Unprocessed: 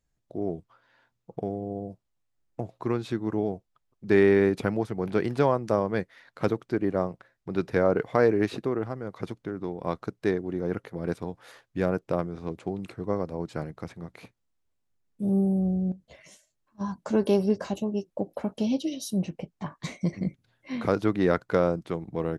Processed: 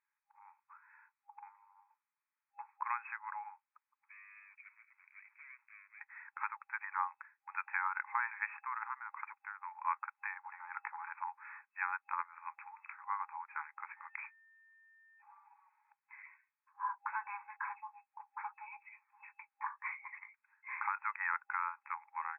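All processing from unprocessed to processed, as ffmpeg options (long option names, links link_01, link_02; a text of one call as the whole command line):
ffmpeg -i in.wav -filter_complex "[0:a]asettb=1/sr,asplit=3[link_01][link_02][link_03];[link_01]atrim=end=4.084[link_04];[link_02]atrim=start=4.08:end=6.01,asetpts=PTS-STARTPTS,afade=type=in:duration=0.004:curve=qsin,afade=type=out:start_time=1.926:duration=0.004:curve=qsin,aeval=exprs='(tanh(28.2*val(0)+0.3)-tanh(0.3))/28.2':channel_layout=same,asplit=3[link_05][link_06][link_07];[link_05]bandpass=frequency=270:width_type=q:width=8,volume=0dB[link_08];[link_06]bandpass=frequency=2290:width_type=q:width=8,volume=-6dB[link_09];[link_07]bandpass=frequency=3010:width_type=q:width=8,volume=-9dB[link_10];[link_08][link_09][link_10]amix=inputs=3:normalize=0,acrusher=bits=6:mode=log:mix=0:aa=0.000001[link_11];[link_03]atrim=start=6.006[link_12];[link_04][link_11]acrossfade=duration=0.004:curve1=hsin:curve2=qsin[link_13];[link_13][link_12]acrossfade=duration=0.004:curve1=qsin:curve2=hsin,asettb=1/sr,asplit=3[link_14][link_15][link_16];[link_14]atrim=end=10.144[link_17];[link_15]atrim=start=10.14:end=11.3,asetpts=PTS-STARTPTS,afade=type=in:duration=0.004:curve=qsin,afade=type=out:start_time=1.156:duration=0.004:curve=qsin,equalizer=frequency=570:width_type=o:width=1.8:gain=13.5,acrossover=split=250|3000[link_18][link_19][link_20];[link_19]acompressor=threshold=-26dB:ratio=5:attack=3.2:release=140:knee=2.83:detection=peak[link_21];[link_18][link_21][link_20]amix=inputs=3:normalize=0[link_22];[link_16]atrim=start=11.296[link_23];[link_17][link_22]acrossfade=duration=0.004:curve1=hsin:curve2=qsin[link_24];[link_24][link_23]acrossfade=duration=0.004:curve1=qsin:curve2=hsin,asettb=1/sr,asplit=3[link_25][link_26][link_27];[link_25]atrim=end=13.934[link_28];[link_26]atrim=start=13.93:end=15.22,asetpts=PTS-STARTPTS,afade=type=in:duration=0.004:curve=qsin,afade=type=out:start_time=1.286:duration=0.004:curve=qsin,equalizer=frequency=4200:width_type=o:width=2.5:gain=7.5,aeval=exprs='val(0)+0.000562*sin(2*PI*1800*n/s)':channel_layout=same[link_29];[link_27]atrim=start=15.216[link_30];[link_28][link_29]acrossfade=duration=0.004:curve1=hsin:curve2=qsin[link_31];[link_31][link_30]acrossfade=duration=0.004:curve1=qsin:curve2=hsin,afftfilt=real='re*between(b*sr/4096,810,2600)':imag='im*between(b*sr/4096,810,2600)':win_size=4096:overlap=0.75,alimiter=limit=-24dB:level=0:latency=1:release=383,volume=2.5dB" out.wav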